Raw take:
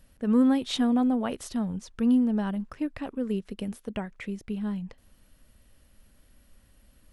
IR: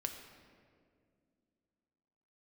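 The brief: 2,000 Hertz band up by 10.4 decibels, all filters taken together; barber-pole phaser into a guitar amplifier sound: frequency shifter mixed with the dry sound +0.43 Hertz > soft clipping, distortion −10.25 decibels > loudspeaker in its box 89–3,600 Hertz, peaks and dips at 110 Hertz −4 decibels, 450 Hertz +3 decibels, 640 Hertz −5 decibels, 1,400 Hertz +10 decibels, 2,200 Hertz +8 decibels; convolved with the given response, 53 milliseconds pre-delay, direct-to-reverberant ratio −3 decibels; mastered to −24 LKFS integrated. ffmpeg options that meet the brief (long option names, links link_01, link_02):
-filter_complex "[0:a]equalizer=frequency=2000:width_type=o:gain=5.5,asplit=2[link_01][link_02];[1:a]atrim=start_sample=2205,adelay=53[link_03];[link_02][link_03]afir=irnorm=-1:irlink=0,volume=3.5dB[link_04];[link_01][link_04]amix=inputs=2:normalize=0,asplit=2[link_05][link_06];[link_06]afreqshift=0.43[link_07];[link_05][link_07]amix=inputs=2:normalize=1,asoftclip=threshold=-22dB,highpass=89,equalizer=frequency=110:width_type=q:width=4:gain=-4,equalizer=frequency=450:width_type=q:width=4:gain=3,equalizer=frequency=640:width_type=q:width=4:gain=-5,equalizer=frequency=1400:width_type=q:width=4:gain=10,equalizer=frequency=2200:width_type=q:width=4:gain=8,lowpass=frequency=3600:width=0.5412,lowpass=frequency=3600:width=1.3066,volume=5.5dB"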